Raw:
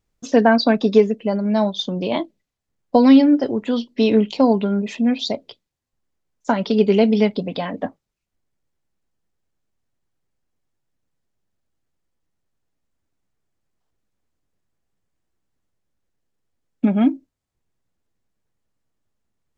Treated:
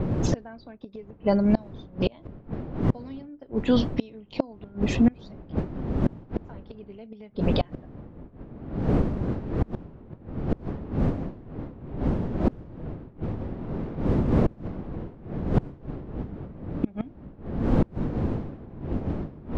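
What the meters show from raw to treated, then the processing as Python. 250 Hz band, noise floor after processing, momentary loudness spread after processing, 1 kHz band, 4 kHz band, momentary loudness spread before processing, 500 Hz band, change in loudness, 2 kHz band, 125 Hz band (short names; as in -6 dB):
-7.5 dB, -50 dBFS, 19 LU, -11.0 dB, -12.0 dB, 13 LU, -10.0 dB, -10.5 dB, -12.0 dB, +5.0 dB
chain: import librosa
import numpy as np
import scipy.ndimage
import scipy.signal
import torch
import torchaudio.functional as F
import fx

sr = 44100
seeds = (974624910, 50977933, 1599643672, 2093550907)

y = fx.dmg_wind(x, sr, seeds[0], corner_hz=250.0, level_db=-19.0)
y = fx.gate_flip(y, sr, shuts_db=-10.0, range_db=-29)
y = fx.env_lowpass(y, sr, base_hz=2700.0, full_db=-18.5)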